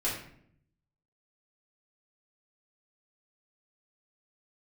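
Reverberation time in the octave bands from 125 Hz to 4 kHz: 1.1 s, 0.95 s, 0.70 s, 0.55 s, 0.60 s, 0.45 s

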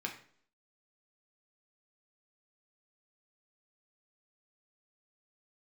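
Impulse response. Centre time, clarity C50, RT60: 17 ms, 9.5 dB, 0.55 s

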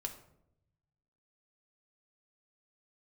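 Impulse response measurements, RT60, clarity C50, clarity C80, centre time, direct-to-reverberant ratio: 0.80 s, 10.5 dB, 13.5 dB, 13 ms, 3.5 dB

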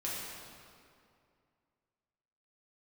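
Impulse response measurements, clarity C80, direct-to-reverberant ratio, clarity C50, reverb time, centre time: 0.5 dB, -7.0 dB, -1.5 dB, 2.4 s, 128 ms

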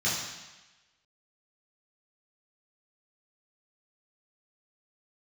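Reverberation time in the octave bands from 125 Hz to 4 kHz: 1.0 s, 1.1 s, 1.0 s, 1.2 s, 1.2 s, 1.2 s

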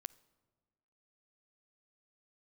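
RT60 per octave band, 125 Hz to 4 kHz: 1.5 s, 1.6 s, 1.5 s, 1.4 s, 1.1 s, 0.90 s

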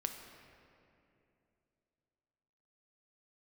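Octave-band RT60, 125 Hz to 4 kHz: 3.3 s, 3.2 s, 3.0 s, 2.5 s, 2.3 s, 1.7 s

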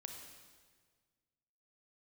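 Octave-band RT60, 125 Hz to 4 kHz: 2.1 s, 1.9 s, 1.7 s, 1.6 s, 1.5 s, 1.4 s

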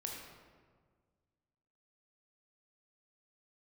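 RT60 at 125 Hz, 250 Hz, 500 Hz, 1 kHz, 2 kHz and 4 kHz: 2.2 s, 2.0 s, 1.8 s, 1.5 s, 1.2 s, 0.95 s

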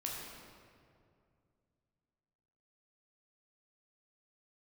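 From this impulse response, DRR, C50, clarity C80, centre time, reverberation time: -3.0 dB, 0.0 dB, 1.5 dB, 105 ms, 2.3 s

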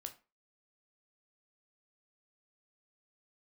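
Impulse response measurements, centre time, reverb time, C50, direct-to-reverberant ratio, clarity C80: 8 ms, 0.30 s, 14.5 dB, 6.0 dB, 20.5 dB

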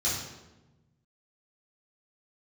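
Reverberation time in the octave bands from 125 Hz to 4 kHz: 1.9 s, 1.6 s, 1.2 s, 0.95 s, 0.85 s, 0.75 s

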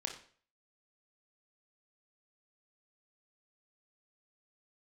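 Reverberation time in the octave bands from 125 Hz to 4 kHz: 0.50 s, 0.45 s, 0.50 s, 0.45 s, 0.45 s, 0.45 s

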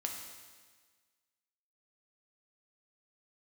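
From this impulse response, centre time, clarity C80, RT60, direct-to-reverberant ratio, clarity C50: 49 ms, 5.5 dB, 1.5 s, 1.0 dB, 4.0 dB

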